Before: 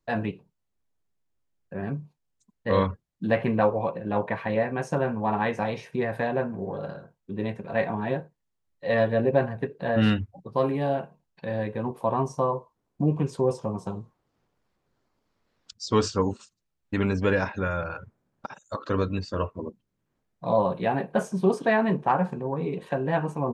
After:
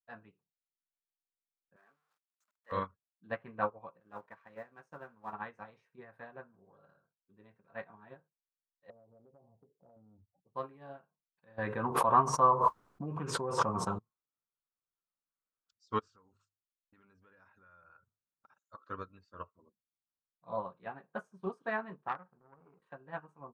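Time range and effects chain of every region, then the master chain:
1.76–2.72 s: jump at every zero crossing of -41.5 dBFS + high-pass 640 Hz
4.00–5.33 s: companding laws mixed up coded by A + bass shelf 89 Hz -10 dB
8.90–10.55 s: steep low-pass 890 Hz 48 dB/octave + compression 10:1, threshold -26 dBFS
11.58–13.99 s: dynamic bell 1.4 kHz, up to +5 dB, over -41 dBFS, Q 0.99 + level flattener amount 100%
15.99–18.59 s: hum notches 50/100/150 Hz + compression, threshold -32 dBFS
22.08–22.82 s: companding laws mixed up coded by A + boxcar filter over 12 samples + transformer saturation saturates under 1.1 kHz
whole clip: peaking EQ 1.3 kHz +13.5 dB 0.8 oct; upward expansion 2.5:1, over -28 dBFS; trim -8.5 dB

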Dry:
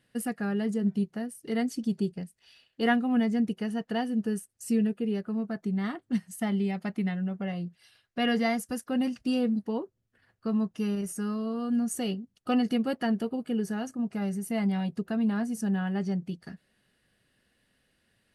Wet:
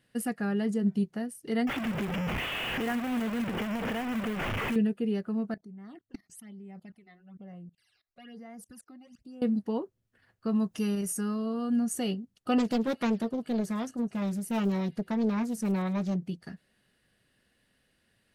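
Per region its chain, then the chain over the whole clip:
1.67–4.76 s: one-bit delta coder 16 kbps, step -25 dBFS + compression 3:1, threshold -29 dBFS + short-mantissa float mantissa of 2-bit
5.54–9.42 s: level held to a coarse grid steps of 23 dB + phase shifter stages 12, 1.1 Hz, lowest notch 150–4400 Hz
10.55–11.21 s: treble shelf 5.3 kHz +7.5 dB + upward compressor, threshold -35 dBFS
12.58–16.16 s: feedback echo behind a high-pass 105 ms, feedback 54%, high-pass 3.3 kHz, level -17.5 dB + loudspeaker Doppler distortion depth 0.74 ms
whole clip: none

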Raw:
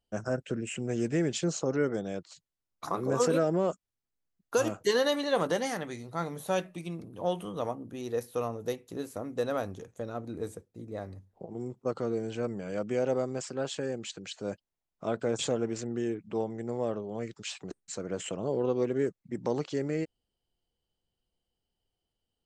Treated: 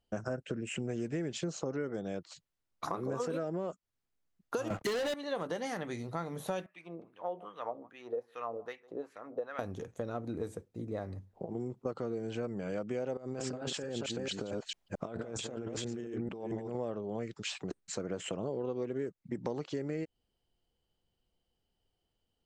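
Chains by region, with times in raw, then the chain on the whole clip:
4.70–5.14 s: waveshaping leveller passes 5 + band-stop 1.2 kHz, Q 17 + three bands expanded up and down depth 40%
6.66–9.59 s: delay 153 ms -22.5 dB + wah-wah 2.5 Hz 500–2100 Hz, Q 2
13.17–16.75 s: chunks repeated in reverse 223 ms, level -5.5 dB + compressor with a negative ratio -40 dBFS
whole clip: treble shelf 6.6 kHz -8.5 dB; compression 5:1, threshold -37 dBFS; trim +3.5 dB

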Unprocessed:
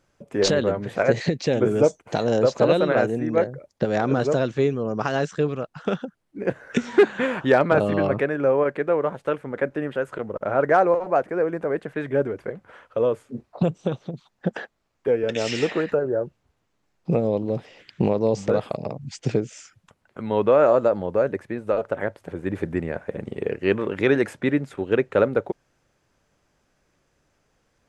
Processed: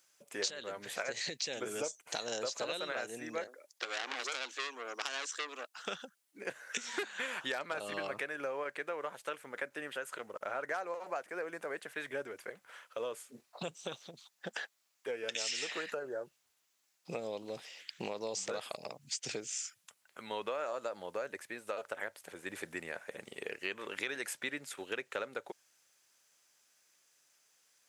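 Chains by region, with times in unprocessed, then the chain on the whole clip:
3.47–5.79 s: steep high-pass 250 Hz 72 dB/octave + transformer saturation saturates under 2.1 kHz
whole clip: differentiator; compression 6:1, threshold -42 dBFS; trim +8 dB

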